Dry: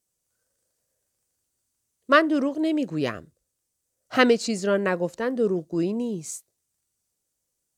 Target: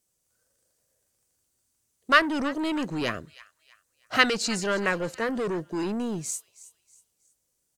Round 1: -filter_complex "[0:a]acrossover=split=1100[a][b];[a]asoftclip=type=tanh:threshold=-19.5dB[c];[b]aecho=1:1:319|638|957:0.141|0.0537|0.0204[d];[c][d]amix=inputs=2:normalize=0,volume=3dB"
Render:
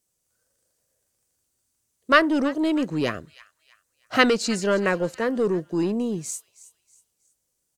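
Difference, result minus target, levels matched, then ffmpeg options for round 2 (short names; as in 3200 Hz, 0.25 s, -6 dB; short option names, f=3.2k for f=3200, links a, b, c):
soft clip: distortion -7 dB
-filter_complex "[0:a]acrossover=split=1100[a][b];[a]asoftclip=type=tanh:threshold=-29.5dB[c];[b]aecho=1:1:319|638|957:0.141|0.0537|0.0204[d];[c][d]amix=inputs=2:normalize=0,volume=3dB"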